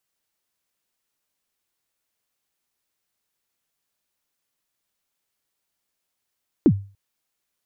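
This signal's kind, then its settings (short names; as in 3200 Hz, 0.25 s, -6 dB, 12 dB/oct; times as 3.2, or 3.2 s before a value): kick drum length 0.29 s, from 370 Hz, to 99 Hz, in 64 ms, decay 0.36 s, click off, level -7.5 dB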